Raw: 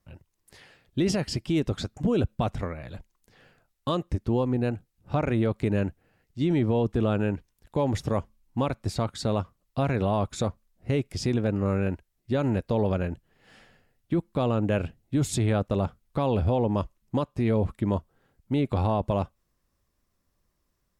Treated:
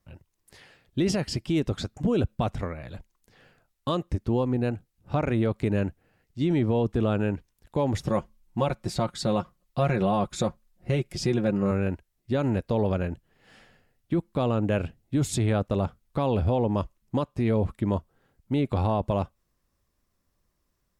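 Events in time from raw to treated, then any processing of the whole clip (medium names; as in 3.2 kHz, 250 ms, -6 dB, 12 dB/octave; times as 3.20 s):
8.06–11.71 s: comb 5.6 ms, depth 64%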